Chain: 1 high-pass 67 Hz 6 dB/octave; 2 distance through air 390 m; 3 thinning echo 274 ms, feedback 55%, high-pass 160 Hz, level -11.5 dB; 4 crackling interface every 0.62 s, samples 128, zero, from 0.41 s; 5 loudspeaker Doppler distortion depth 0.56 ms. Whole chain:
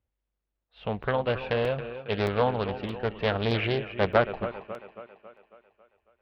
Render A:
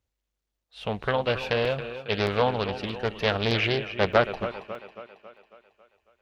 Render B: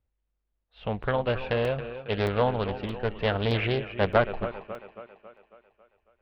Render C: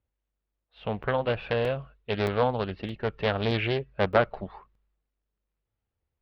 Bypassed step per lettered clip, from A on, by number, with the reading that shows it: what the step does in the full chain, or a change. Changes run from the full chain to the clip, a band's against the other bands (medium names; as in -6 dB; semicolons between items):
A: 2, 4 kHz band +5.0 dB; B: 1, 125 Hz band +1.5 dB; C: 3, momentary loudness spread change -5 LU